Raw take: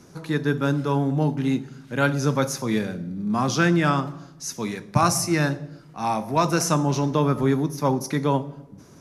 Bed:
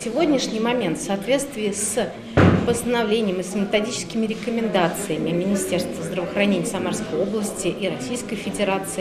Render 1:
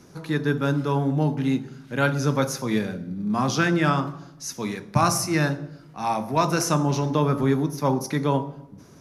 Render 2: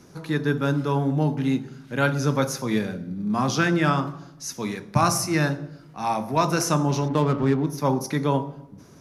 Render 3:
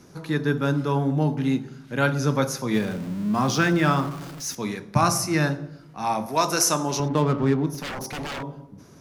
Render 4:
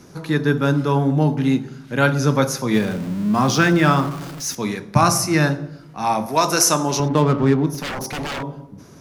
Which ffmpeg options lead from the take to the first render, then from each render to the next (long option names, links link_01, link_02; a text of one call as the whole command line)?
ffmpeg -i in.wav -af "equalizer=frequency=7800:width_type=o:width=0.53:gain=-3.5,bandreject=frequency=56.73:width_type=h:width=4,bandreject=frequency=113.46:width_type=h:width=4,bandreject=frequency=170.19:width_type=h:width=4,bandreject=frequency=226.92:width_type=h:width=4,bandreject=frequency=283.65:width_type=h:width=4,bandreject=frequency=340.38:width_type=h:width=4,bandreject=frequency=397.11:width_type=h:width=4,bandreject=frequency=453.84:width_type=h:width=4,bandreject=frequency=510.57:width_type=h:width=4,bandreject=frequency=567.3:width_type=h:width=4,bandreject=frequency=624.03:width_type=h:width=4,bandreject=frequency=680.76:width_type=h:width=4,bandreject=frequency=737.49:width_type=h:width=4,bandreject=frequency=794.22:width_type=h:width=4,bandreject=frequency=850.95:width_type=h:width=4,bandreject=frequency=907.68:width_type=h:width=4,bandreject=frequency=964.41:width_type=h:width=4,bandreject=frequency=1021.14:width_type=h:width=4,bandreject=frequency=1077.87:width_type=h:width=4,bandreject=frequency=1134.6:width_type=h:width=4,bandreject=frequency=1191.33:width_type=h:width=4,bandreject=frequency=1248.06:width_type=h:width=4,bandreject=frequency=1304.79:width_type=h:width=4,bandreject=frequency=1361.52:width_type=h:width=4,bandreject=frequency=1418.25:width_type=h:width=4,bandreject=frequency=1474.98:width_type=h:width=4,bandreject=frequency=1531.71:width_type=h:width=4" out.wav
ffmpeg -i in.wav -filter_complex "[0:a]asettb=1/sr,asplit=3[link_01][link_02][link_03];[link_01]atrim=end=7.084[link_04];[link_02]atrim=start=7.08:end=7.67,asetpts=PTS-STARTPTS,afade=type=in:duration=0.004:curve=qsin,afade=type=out:start_time=0.586:duration=0.004:curve=qsin,adynamicsmooth=sensitivity=5:basefreq=1000[link_05];[link_03]atrim=start=7.666[link_06];[link_04][link_05]acrossfade=duration=0.004:curve1=hsin:curve2=qsin[link_07];[link_07][link_06]acrossfade=duration=0.004:curve1=qsin:curve2=hsin" out.wav
ffmpeg -i in.wav -filter_complex "[0:a]asettb=1/sr,asplit=3[link_01][link_02][link_03];[link_01]atrim=end=2.744[link_04];[link_02]atrim=start=2.74:end=4.55,asetpts=PTS-STARTPTS,afade=type=in:duration=0.004:curve=qsin,afade=type=out:start_time=1.806:duration=0.004:curve=qsin,aeval=exprs='val(0)+0.5*0.0178*sgn(val(0))':channel_layout=same[link_05];[link_03]atrim=start=4.546[link_06];[link_04][link_05]acrossfade=duration=0.004:curve1=hsin:curve2=qsin[link_07];[link_07][link_06]acrossfade=duration=0.004:curve1=qsin:curve2=hsin,asettb=1/sr,asplit=3[link_08][link_09][link_10];[link_08]atrim=end=6.264[link_11];[link_09]atrim=start=6.26:end=7,asetpts=PTS-STARTPTS,afade=type=in:duration=0.004:curve=qsin,afade=type=out:start_time=0.736:duration=0.004:curve=qsin,bass=frequency=250:gain=-10,treble=frequency=4000:gain=8[link_12];[link_10]atrim=start=6.996[link_13];[link_11][link_12]acrossfade=duration=0.004:curve1=hsin:curve2=qsin[link_14];[link_14][link_13]acrossfade=duration=0.004:curve1=qsin:curve2=hsin,asettb=1/sr,asplit=3[link_15][link_16][link_17];[link_15]atrim=end=7.744[link_18];[link_16]atrim=start=7.74:end=8.43,asetpts=PTS-STARTPTS,afade=type=in:duration=0.004:curve=qsin,afade=type=out:start_time=0.686:duration=0.004:curve=qsin,aeval=exprs='0.0447*(abs(mod(val(0)/0.0447+3,4)-2)-1)':channel_layout=same[link_19];[link_17]atrim=start=8.426[link_20];[link_18][link_19]acrossfade=duration=0.004:curve1=hsin:curve2=qsin[link_21];[link_21][link_20]acrossfade=duration=0.004:curve1=qsin:curve2=hsin" out.wav
ffmpeg -i in.wav -af "volume=5dB,alimiter=limit=-3dB:level=0:latency=1" out.wav